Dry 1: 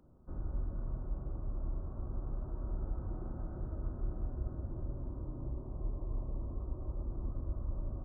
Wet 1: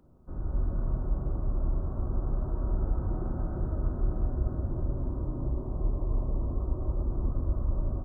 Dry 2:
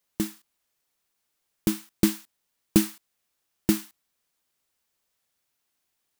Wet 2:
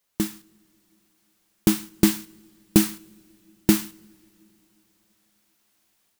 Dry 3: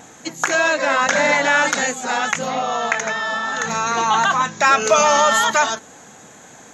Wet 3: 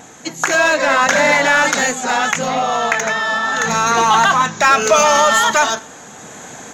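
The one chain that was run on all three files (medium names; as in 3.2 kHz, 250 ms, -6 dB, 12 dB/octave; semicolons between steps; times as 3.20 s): level rider gain up to 6.5 dB; in parallel at -5 dB: hard clipper -18 dBFS; on the sum: two-slope reverb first 0.54 s, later 3.5 s, from -18 dB, DRR 17 dB; trim -1 dB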